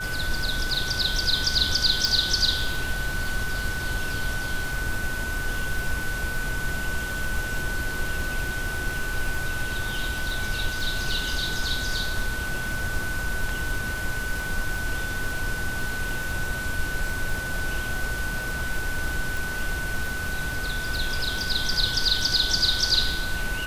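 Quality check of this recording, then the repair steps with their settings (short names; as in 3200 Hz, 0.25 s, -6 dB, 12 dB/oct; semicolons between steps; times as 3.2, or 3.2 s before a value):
crackle 35/s -30 dBFS
tone 1500 Hz -30 dBFS
2.05 pop
19.37 pop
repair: de-click; notch 1500 Hz, Q 30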